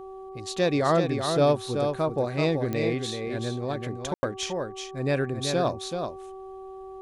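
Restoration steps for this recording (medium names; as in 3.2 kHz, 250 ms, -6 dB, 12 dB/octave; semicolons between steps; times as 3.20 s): de-click; de-hum 381.9 Hz, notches 3; room tone fill 4.14–4.23 s; inverse comb 381 ms -6 dB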